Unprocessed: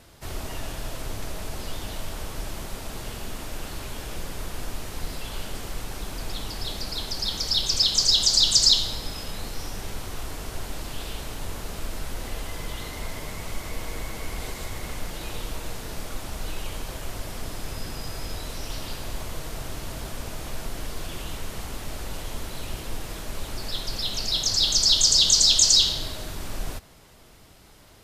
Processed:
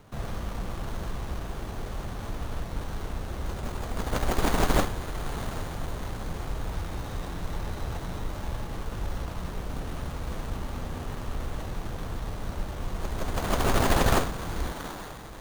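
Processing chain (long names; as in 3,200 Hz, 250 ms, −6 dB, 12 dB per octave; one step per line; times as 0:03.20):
feedback delay with all-pass diffusion 1,497 ms, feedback 43%, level −14 dB
change of speed 1.82×
windowed peak hold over 17 samples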